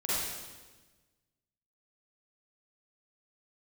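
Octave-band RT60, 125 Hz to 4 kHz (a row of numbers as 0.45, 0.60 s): 1.7, 1.6, 1.4, 1.2, 1.2, 1.2 s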